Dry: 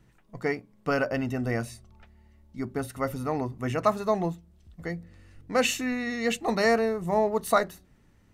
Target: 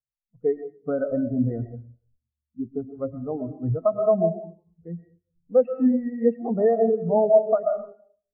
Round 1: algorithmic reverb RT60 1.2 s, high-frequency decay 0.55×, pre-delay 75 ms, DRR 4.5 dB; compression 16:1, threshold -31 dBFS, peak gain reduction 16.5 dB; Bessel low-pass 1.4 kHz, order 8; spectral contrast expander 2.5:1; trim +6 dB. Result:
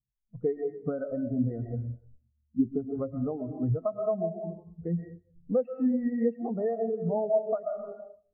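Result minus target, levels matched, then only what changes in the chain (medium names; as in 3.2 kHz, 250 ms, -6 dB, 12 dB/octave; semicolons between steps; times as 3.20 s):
compression: peak gain reduction +9.5 dB
change: compression 16:1, threshold -21 dBFS, peak gain reduction 7 dB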